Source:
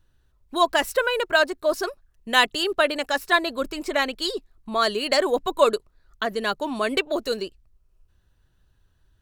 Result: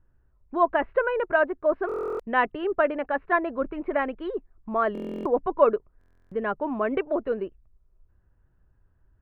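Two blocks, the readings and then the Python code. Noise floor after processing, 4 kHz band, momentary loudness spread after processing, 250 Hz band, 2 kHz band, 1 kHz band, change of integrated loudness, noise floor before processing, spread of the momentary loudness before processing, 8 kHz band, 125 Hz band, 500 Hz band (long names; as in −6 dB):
−65 dBFS, below −20 dB, 9 LU, −0.5 dB, −5.5 dB, −2.0 dB, −3.0 dB, −65 dBFS, 10 LU, below −35 dB, can't be measured, −1.0 dB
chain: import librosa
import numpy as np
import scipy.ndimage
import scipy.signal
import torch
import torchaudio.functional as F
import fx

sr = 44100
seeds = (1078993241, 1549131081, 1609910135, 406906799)

y = scipy.signal.sosfilt(scipy.signal.bessel(8, 1300.0, 'lowpass', norm='mag', fs=sr, output='sos'), x)
y = fx.buffer_glitch(y, sr, at_s=(1.87, 4.93, 5.99), block=1024, repeats=13)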